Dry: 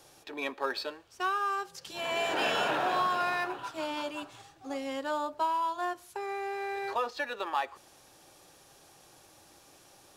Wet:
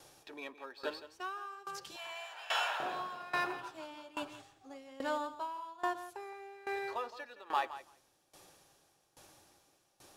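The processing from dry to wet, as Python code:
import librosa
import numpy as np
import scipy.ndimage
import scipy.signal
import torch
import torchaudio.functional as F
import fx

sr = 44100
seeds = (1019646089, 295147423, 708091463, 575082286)

y = fx.highpass(x, sr, hz=750.0, slope=24, at=(1.96, 2.8))
y = fx.echo_feedback(y, sr, ms=167, feedback_pct=17, wet_db=-10.0)
y = fx.tremolo_decay(y, sr, direction='decaying', hz=1.2, depth_db=20)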